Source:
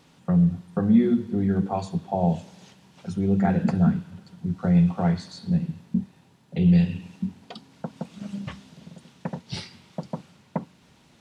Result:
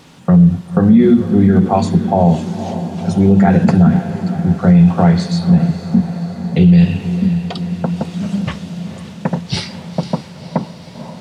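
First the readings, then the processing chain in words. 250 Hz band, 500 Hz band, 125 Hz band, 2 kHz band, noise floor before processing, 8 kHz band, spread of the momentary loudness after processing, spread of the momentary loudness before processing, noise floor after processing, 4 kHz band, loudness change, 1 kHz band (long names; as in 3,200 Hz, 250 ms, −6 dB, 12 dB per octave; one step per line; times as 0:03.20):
+11.5 dB, +12.5 dB, +12.0 dB, +12.5 dB, −57 dBFS, can't be measured, 14 LU, 19 LU, −35 dBFS, +13.5 dB, +10.5 dB, +12.5 dB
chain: feedback delay with all-pass diffusion 511 ms, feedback 66%, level −13 dB
boost into a limiter +14.5 dB
level −1 dB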